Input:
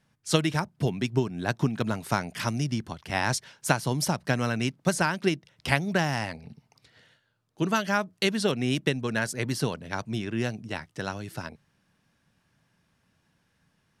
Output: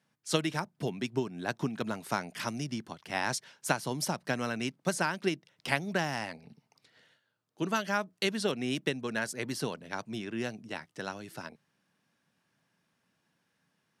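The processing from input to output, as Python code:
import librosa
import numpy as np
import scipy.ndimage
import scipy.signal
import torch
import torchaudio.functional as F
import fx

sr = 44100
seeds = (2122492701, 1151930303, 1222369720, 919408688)

y = scipy.signal.sosfilt(scipy.signal.butter(2, 180.0, 'highpass', fs=sr, output='sos'), x)
y = y * 10.0 ** (-4.5 / 20.0)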